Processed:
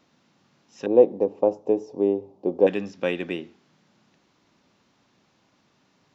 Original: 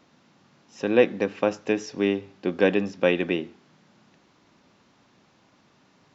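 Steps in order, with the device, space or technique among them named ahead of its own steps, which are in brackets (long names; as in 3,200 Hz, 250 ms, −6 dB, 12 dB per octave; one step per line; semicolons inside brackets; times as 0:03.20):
exciter from parts (in parallel at −11 dB: high-pass filter 2,000 Hz 12 dB per octave + soft clipping −32 dBFS, distortion −6 dB)
0:00.86–0:02.67: on the sum: drawn EQ curve 210 Hz 0 dB, 440 Hz +9 dB, 920 Hz +5 dB, 1,500 Hz −22 dB, 7,600 Hz −13 dB
level −4.5 dB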